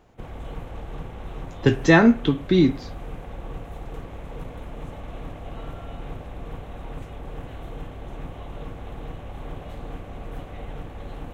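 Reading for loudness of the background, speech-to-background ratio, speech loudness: -38.5 LUFS, 19.5 dB, -19.0 LUFS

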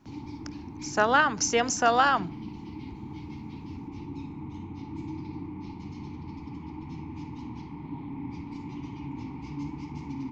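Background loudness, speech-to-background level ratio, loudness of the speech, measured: -39.5 LUFS, 15.5 dB, -24.0 LUFS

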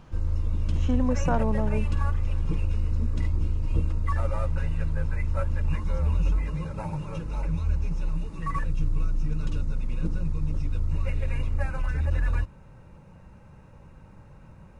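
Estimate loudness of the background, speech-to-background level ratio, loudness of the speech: -29.5 LUFS, -0.5 dB, -30.0 LUFS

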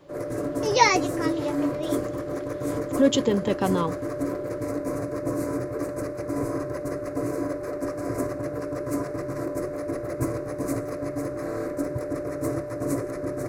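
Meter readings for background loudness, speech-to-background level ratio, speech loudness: -30.0 LUFS, 5.5 dB, -24.5 LUFS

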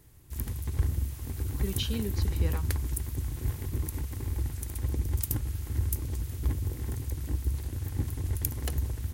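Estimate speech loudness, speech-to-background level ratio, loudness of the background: -37.0 LUFS, -4.0 dB, -33.0 LUFS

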